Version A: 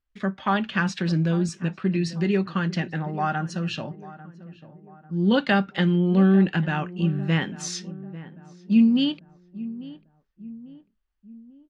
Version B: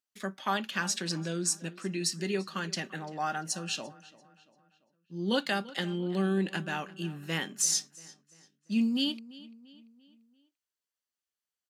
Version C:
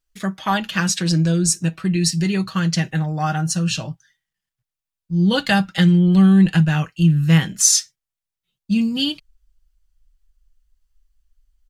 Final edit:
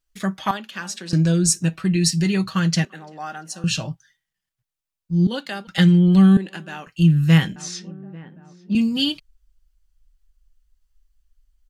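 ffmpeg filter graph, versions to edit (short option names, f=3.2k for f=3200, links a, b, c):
-filter_complex "[1:a]asplit=4[a][b][c][d];[2:a]asplit=6[e][f][g][h][i][j];[e]atrim=end=0.512[k];[a]atrim=start=0.508:end=1.132[l];[f]atrim=start=1.128:end=2.852[m];[b]atrim=start=2.848:end=3.642[n];[g]atrim=start=3.638:end=5.272[o];[c]atrim=start=5.268:end=5.672[p];[h]atrim=start=5.668:end=6.372[q];[d]atrim=start=6.368:end=6.872[r];[i]atrim=start=6.868:end=7.562[s];[0:a]atrim=start=7.558:end=8.752[t];[j]atrim=start=8.748[u];[k][l]acrossfade=d=0.004:c1=hsin:c2=hsin[v];[v][m]acrossfade=d=0.004:c1=hsin:c2=hsin[w];[w][n]acrossfade=d=0.004:c1=hsin:c2=hsin[x];[x][o]acrossfade=d=0.004:c1=hsin:c2=hsin[y];[y][p]acrossfade=d=0.004:c1=hsin:c2=hsin[z];[z][q]acrossfade=d=0.004:c1=hsin:c2=hsin[aa];[aa][r]acrossfade=d=0.004:c1=hsin:c2=hsin[ab];[ab][s]acrossfade=d=0.004:c1=hsin:c2=hsin[ac];[ac][t]acrossfade=d=0.004:c1=hsin:c2=hsin[ad];[ad][u]acrossfade=d=0.004:c1=hsin:c2=hsin"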